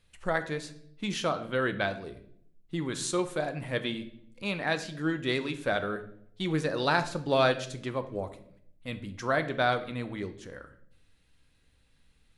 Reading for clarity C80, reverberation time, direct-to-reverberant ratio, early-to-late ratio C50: 16.5 dB, 0.65 s, 9.0 dB, 13.0 dB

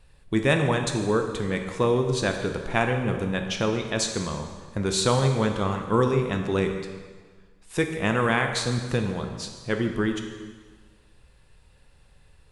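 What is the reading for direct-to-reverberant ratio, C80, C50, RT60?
4.5 dB, 7.5 dB, 6.0 dB, 1.5 s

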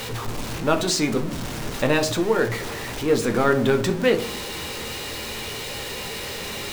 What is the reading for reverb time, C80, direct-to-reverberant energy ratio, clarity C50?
0.60 s, 17.0 dB, 5.0 dB, 12.5 dB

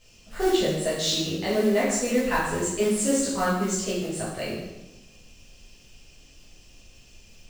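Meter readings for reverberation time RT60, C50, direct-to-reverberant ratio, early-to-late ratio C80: 1.0 s, 1.0 dB, -10.5 dB, 4.5 dB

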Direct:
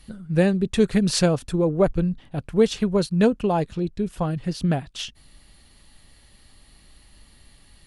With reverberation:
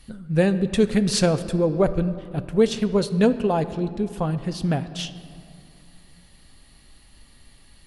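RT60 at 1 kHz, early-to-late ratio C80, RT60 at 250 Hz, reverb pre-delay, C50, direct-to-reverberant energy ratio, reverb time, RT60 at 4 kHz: 2.5 s, 14.0 dB, 3.0 s, 4 ms, 13.5 dB, 11.0 dB, 2.5 s, 1.4 s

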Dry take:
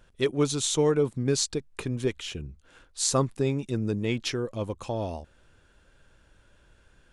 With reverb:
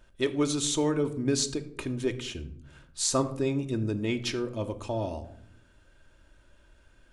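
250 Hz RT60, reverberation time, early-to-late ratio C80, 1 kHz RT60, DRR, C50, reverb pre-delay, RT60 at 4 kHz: 1.2 s, 0.70 s, 17.0 dB, 0.65 s, 6.0 dB, 13.5 dB, 3 ms, 0.40 s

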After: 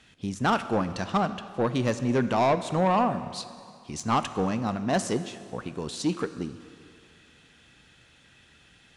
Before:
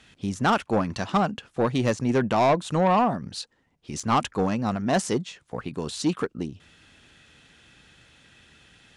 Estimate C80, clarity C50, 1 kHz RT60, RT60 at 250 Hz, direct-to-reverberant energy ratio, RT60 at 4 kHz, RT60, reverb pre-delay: 13.0 dB, 12.5 dB, 2.4 s, 2.2 s, 11.5 dB, 2.1 s, 2.3 s, 16 ms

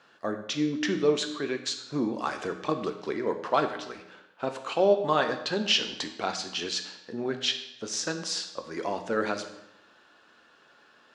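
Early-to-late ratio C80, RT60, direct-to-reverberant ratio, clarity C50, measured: 11.0 dB, 0.90 s, 6.0 dB, 9.5 dB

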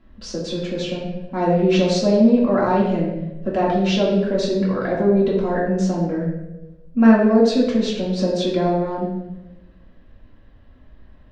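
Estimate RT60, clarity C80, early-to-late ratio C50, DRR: 1.0 s, 5.5 dB, 2.5 dB, -5.5 dB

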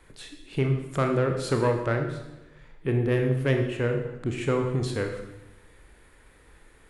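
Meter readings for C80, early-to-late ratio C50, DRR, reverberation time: 8.5 dB, 6.0 dB, 3.5 dB, 1.0 s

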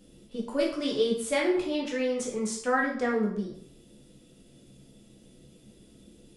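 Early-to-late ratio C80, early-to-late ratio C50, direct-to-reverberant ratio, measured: 9.5 dB, 5.5 dB, -2.5 dB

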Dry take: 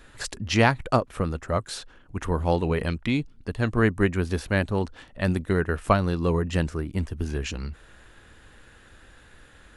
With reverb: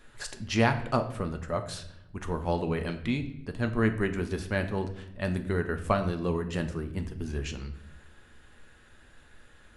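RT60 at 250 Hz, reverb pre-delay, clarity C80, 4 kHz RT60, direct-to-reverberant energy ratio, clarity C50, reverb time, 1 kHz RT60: 1.1 s, 5 ms, 14.5 dB, 0.60 s, 6.0 dB, 11.5 dB, 0.75 s, 0.65 s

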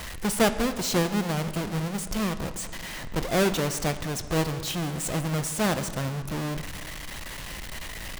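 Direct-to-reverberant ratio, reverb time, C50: 10.0 dB, 1.7 s, 12.0 dB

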